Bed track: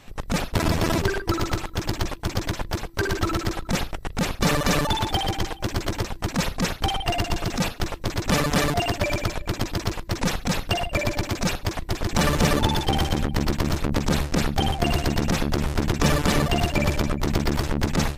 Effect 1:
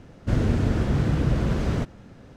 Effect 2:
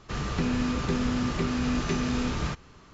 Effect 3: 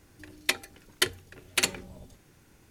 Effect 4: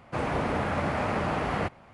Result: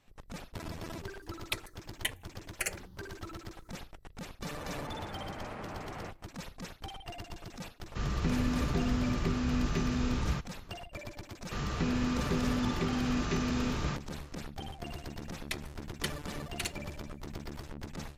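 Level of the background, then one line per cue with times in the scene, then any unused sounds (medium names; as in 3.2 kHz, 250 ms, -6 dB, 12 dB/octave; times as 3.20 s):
bed track -19.5 dB
1.03 s: add 3 -5.5 dB + stepped phaser 4 Hz 570–4200 Hz
4.43 s: add 4 -14.5 dB
7.86 s: add 2 -6 dB + bass shelf 130 Hz +7.5 dB
11.42 s: add 2 -4 dB
15.02 s: add 3 -12 dB
not used: 1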